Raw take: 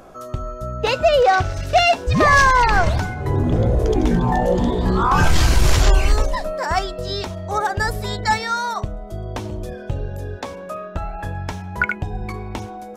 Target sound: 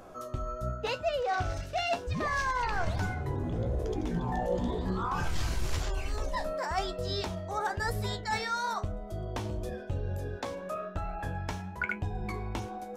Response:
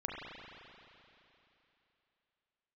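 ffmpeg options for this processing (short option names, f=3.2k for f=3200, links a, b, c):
-af "areverse,acompressor=threshold=-22dB:ratio=6,areverse,flanger=delay=9.9:depth=8.3:regen=59:speed=1:shape=sinusoidal,volume=-2dB"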